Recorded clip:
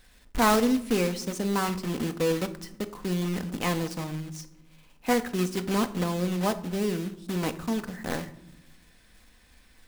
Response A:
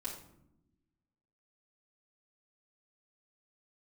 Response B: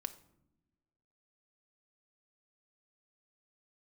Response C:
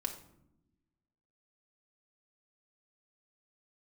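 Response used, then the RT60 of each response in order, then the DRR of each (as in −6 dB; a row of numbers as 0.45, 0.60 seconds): B; 0.85 s, non-exponential decay, 0.85 s; −7.0, 9.0, 2.0 decibels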